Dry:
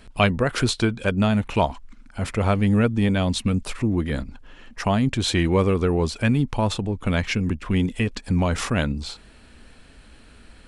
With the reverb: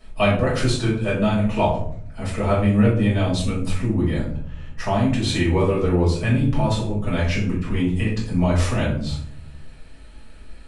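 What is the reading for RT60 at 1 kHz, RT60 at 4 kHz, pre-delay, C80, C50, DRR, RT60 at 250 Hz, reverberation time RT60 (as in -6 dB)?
0.55 s, 0.35 s, 4 ms, 9.0 dB, 4.0 dB, -7.5 dB, 1.0 s, 0.60 s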